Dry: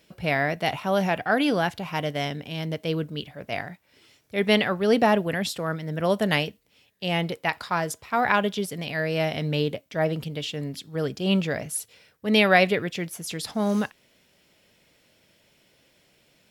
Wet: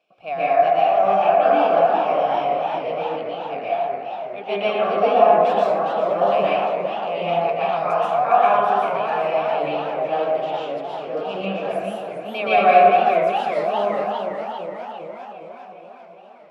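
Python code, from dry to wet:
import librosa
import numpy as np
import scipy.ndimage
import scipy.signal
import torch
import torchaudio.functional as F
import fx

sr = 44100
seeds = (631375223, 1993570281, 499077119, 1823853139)

y = fx.vowel_filter(x, sr, vowel='a')
y = fx.rev_plate(y, sr, seeds[0], rt60_s=1.8, hf_ratio=0.3, predelay_ms=110, drr_db=-10.0)
y = fx.echo_warbled(y, sr, ms=406, feedback_pct=65, rate_hz=2.8, cents=181, wet_db=-8.0)
y = y * 10.0 ** (4.5 / 20.0)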